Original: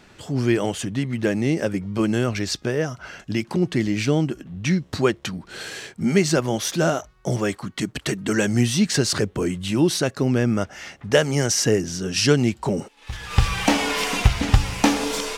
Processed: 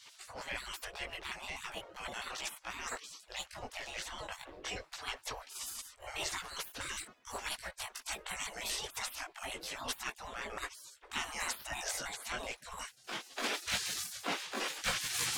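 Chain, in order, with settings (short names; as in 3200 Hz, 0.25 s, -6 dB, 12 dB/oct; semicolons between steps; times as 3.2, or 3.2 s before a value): trilling pitch shifter +5 st, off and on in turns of 82 ms; high shelf 2000 Hz -11 dB; reverse; compressor 5:1, threshold -34 dBFS, peak gain reduction 21.5 dB; reverse; chorus voices 6, 0.35 Hz, delay 20 ms, depth 4.1 ms; spectral gate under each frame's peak -25 dB weak; gain +17 dB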